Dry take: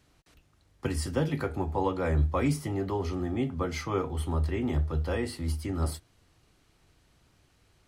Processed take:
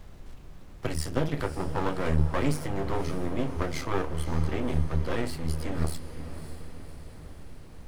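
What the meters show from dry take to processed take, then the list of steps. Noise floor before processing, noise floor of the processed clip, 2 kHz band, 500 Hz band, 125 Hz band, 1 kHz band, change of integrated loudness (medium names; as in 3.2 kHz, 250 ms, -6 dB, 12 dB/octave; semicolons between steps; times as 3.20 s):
-66 dBFS, -46 dBFS, +2.0 dB, -0.5 dB, 0.0 dB, +0.5 dB, -0.5 dB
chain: half-wave rectifier; echo that smears into a reverb 564 ms, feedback 55%, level -11.5 dB; added noise brown -48 dBFS; trim +4 dB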